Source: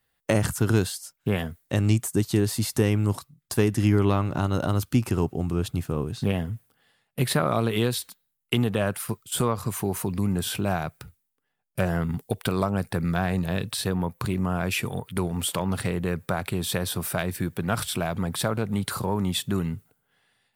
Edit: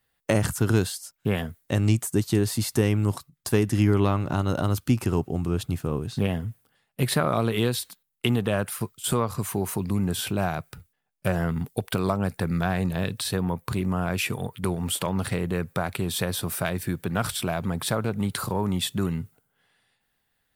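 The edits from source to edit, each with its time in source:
shrink pauses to 60%

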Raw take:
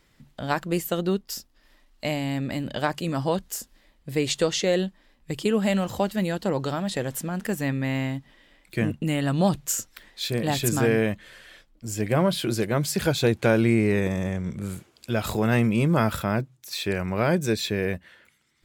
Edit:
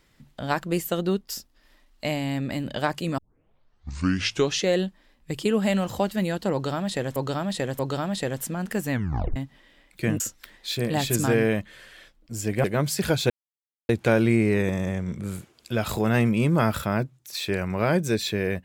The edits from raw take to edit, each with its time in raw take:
3.18 s: tape start 1.47 s
6.53–7.16 s: loop, 3 plays
7.66 s: tape stop 0.44 s
8.94–9.73 s: delete
12.17–12.61 s: delete
13.27 s: insert silence 0.59 s

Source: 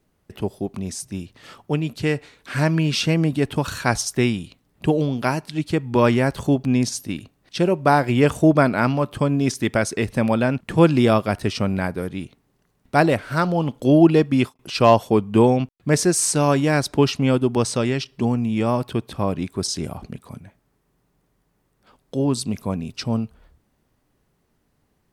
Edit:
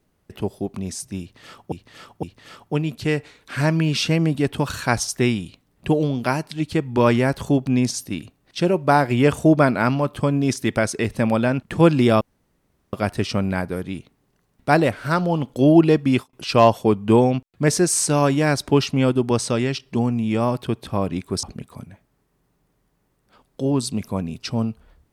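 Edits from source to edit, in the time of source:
1.21–1.72 s: loop, 3 plays
11.19 s: insert room tone 0.72 s
19.69–19.97 s: delete

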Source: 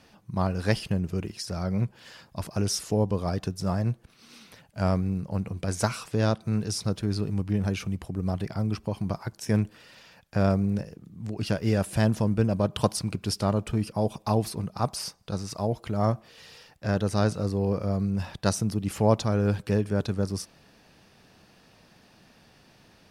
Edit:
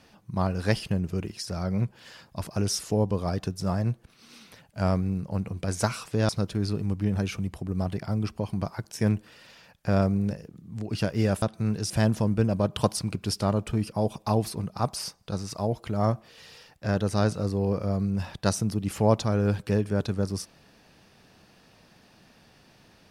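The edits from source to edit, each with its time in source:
6.29–6.77 s: move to 11.90 s

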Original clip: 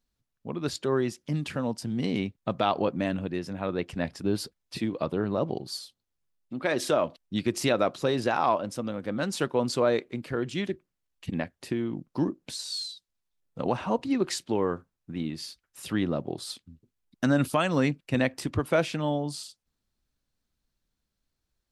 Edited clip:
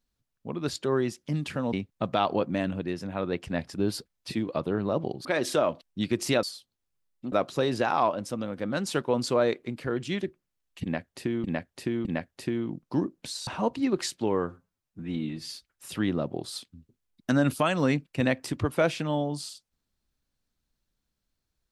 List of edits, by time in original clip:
1.73–2.19 s: delete
5.71–6.60 s: move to 7.78 s
11.29–11.90 s: loop, 3 plays
12.71–13.75 s: delete
14.75–15.43 s: stretch 1.5×

